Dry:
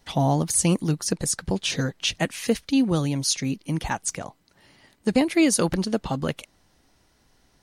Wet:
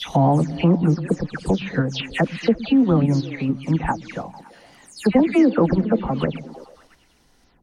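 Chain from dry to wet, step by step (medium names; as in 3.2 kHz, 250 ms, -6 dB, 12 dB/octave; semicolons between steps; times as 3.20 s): delay that grows with frequency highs early, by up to 181 ms; repeats whose band climbs or falls 113 ms, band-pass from 160 Hz, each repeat 0.7 oct, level -9.5 dB; in parallel at +0.5 dB: level held to a coarse grid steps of 12 dB; on the sum: modulation noise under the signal 27 dB; low-pass that closes with the level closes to 1.6 kHz, closed at -17.5 dBFS; trim +1 dB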